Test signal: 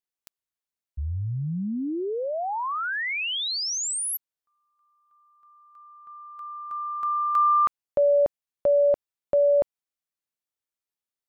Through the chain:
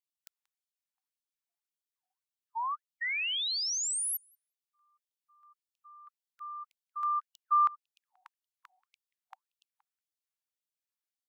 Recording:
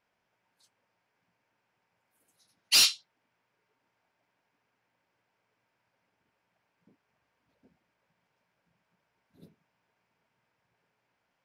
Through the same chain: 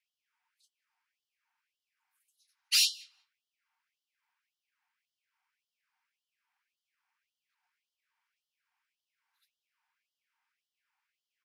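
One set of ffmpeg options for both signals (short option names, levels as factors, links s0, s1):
-filter_complex "[0:a]asplit=2[s0][s1];[s1]adelay=183,lowpass=f=3300:p=1,volume=0.0841,asplit=2[s2][s3];[s3]adelay=183,lowpass=f=3300:p=1,volume=0.15[s4];[s0][s2][s4]amix=inputs=3:normalize=0,afftfilt=real='re*gte(b*sr/1024,710*pow(2900/710,0.5+0.5*sin(2*PI*1.8*pts/sr)))':imag='im*gte(b*sr/1024,710*pow(2900/710,0.5+0.5*sin(2*PI*1.8*pts/sr)))':win_size=1024:overlap=0.75,volume=0.631"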